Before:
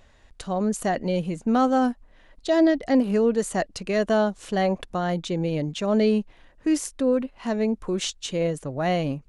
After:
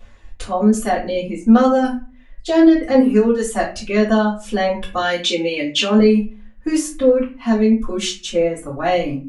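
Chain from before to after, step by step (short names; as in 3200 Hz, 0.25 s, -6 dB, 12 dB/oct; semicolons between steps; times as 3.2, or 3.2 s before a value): 4.97–5.99 weighting filter D; reverb removal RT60 1.7 s; bell 160 Hz -9.5 dB 0.32 oct; reverb RT60 0.35 s, pre-delay 3 ms, DRR -10 dB; gain -2.5 dB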